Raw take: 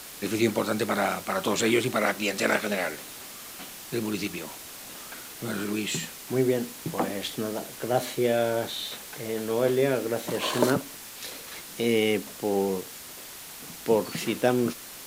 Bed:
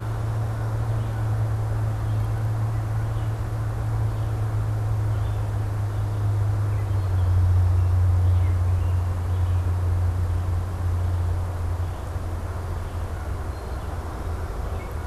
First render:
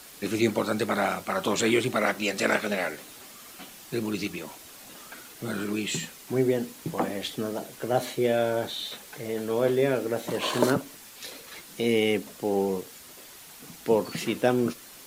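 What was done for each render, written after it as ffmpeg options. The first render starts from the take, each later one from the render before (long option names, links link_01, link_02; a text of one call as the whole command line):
ffmpeg -i in.wav -af "afftdn=noise_reduction=6:noise_floor=-43" out.wav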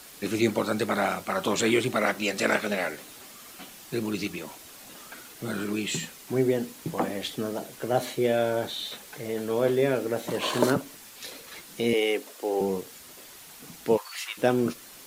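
ffmpeg -i in.wav -filter_complex "[0:a]asettb=1/sr,asplit=3[link_01][link_02][link_03];[link_01]atrim=end=11.934[link_04];[link_02]atrim=start=11.93:end=12.61,asetpts=PTS-STARTPTS,afade=type=in:duration=0.004:curve=qsin,afade=type=out:start_time=0.676:duration=0.004:curve=qsin,highpass=frequency=320:width=0.5412,highpass=frequency=320:width=1.3066[link_05];[link_03]atrim=start=12.606[link_06];[link_04][link_05]acrossfade=duration=0.004:curve1=hsin:curve2=qsin[link_07];[link_07][link_06]acrossfade=duration=0.004:curve1=qsin:curve2=hsin,asplit=3[link_08][link_09][link_10];[link_08]afade=type=out:start_time=13.96:duration=0.02[link_11];[link_09]highpass=frequency=970:width=0.5412,highpass=frequency=970:width=1.3066,afade=type=in:start_time=13.96:duration=0.02,afade=type=out:start_time=14.37:duration=0.02[link_12];[link_10]afade=type=in:start_time=14.37:duration=0.02[link_13];[link_11][link_12][link_13]amix=inputs=3:normalize=0" out.wav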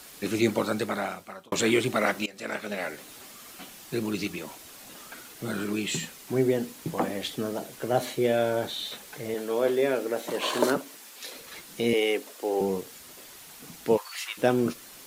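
ffmpeg -i in.wav -filter_complex "[0:a]asettb=1/sr,asplit=3[link_01][link_02][link_03];[link_01]atrim=end=9.344[link_04];[link_02]atrim=start=9.34:end=11.36,asetpts=PTS-STARTPTS,afade=type=in:duration=0.004:curve=qsin,afade=type=out:start_time=2.016:duration=0.004:curve=qsin,highpass=260[link_05];[link_03]atrim=start=11.356[link_06];[link_04][link_05]acrossfade=duration=0.004:curve1=hsin:curve2=qsin[link_07];[link_07][link_06]acrossfade=duration=0.004:curve1=qsin:curve2=hsin,asplit=3[link_08][link_09][link_10];[link_08]atrim=end=1.52,asetpts=PTS-STARTPTS,afade=type=out:start_time=0.64:duration=0.88[link_11];[link_09]atrim=start=1.52:end=2.26,asetpts=PTS-STARTPTS,afade=type=in:duration=0.004:curve=hsin,afade=type=out:start_time=0.736:duration=0.004:curve=hsin:silence=0.0944061[link_12];[link_10]atrim=start=2.26,asetpts=PTS-STARTPTS,afade=type=in:duration=0.89:silence=0.0944061[link_13];[link_11][link_12][link_13]concat=n=3:v=0:a=1" out.wav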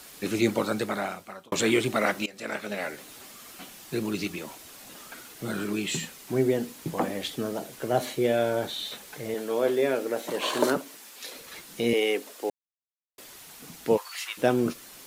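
ffmpeg -i in.wav -filter_complex "[0:a]asplit=3[link_01][link_02][link_03];[link_01]atrim=end=12.5,asetpts=PTS-STARTPTS,afade=type=out:start_time=12.496:duration=0.004:curve=hsin[link_04];[link_02]atrim=start=12.5:end=13.18,asetpts=PTS-STARTPTS,volume=0[link_05];[link_03]atrim=start=13.18,asetpts=PTS-STARTPTS,afade=type=in:duration=0.004:curve=hsin[link_06];[link_04][link_05][link_06]concat=n=3:v=0:a=1" out.wav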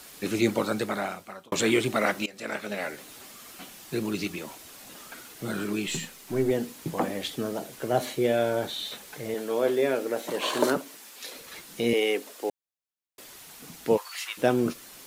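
ffmpeg -i in.wav -filter_complex "[0:a]asettb=1/sr,asplit=3[link_01][link_02][link_03];[link_01]atrim=end=5.874[link_04];[link_02]atrim=start=5.87:end=6.51,asetpts=PTS-STARTPTS,afade=type=in:duration=0.004:curve=qsin,afade=type=out:start_time=0.636:duration=0.004:curve=qsin,aeval=exprs='if(lt(val(0),0),0.708*val(0),val(0))':channel_layout=same[link_05];[link_03]atrim=start=6.506[link_06];[link_04][link_05]acrossfade=duration=0.004:curve1=hsin:curve2=qsin[link_07];[link_07][link_06]acrossfade=duration=0.004:curve1=qsin:curve2=hsin" out.wav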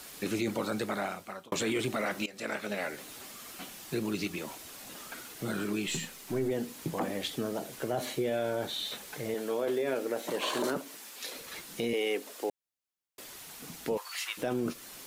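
ffmpeg -i in.wav -af "alimiter=limit=-18.5dB:level=0:latency=1:release=10,acompressor=threshold=-34dB:ratio=1.5" out.wav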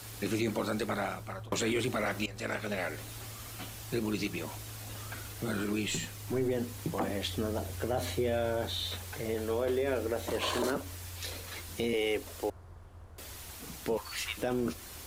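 ffmpeg -i in.wav -i bed.wav -filter_complex "[1:a]volume=-22dB[link_01];[0:a][link_01]amix=inputs=2:normalize=0" out.wav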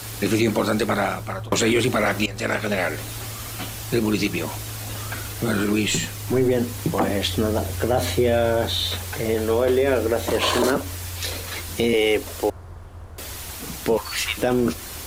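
ffmpeg -i in.wav -af "volume=11.5dB" out.wav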